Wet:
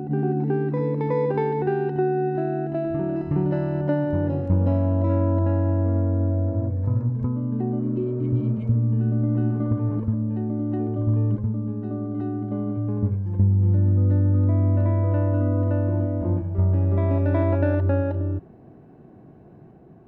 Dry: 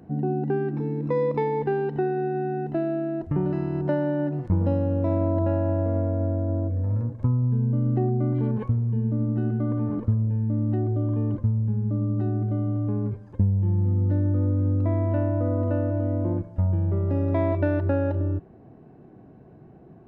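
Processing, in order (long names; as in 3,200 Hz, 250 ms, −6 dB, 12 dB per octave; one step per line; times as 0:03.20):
backwards echo 368 ms −4.5 dB
healed spectral selection 0:07.82–0:08.70, 390–2,100 Hz after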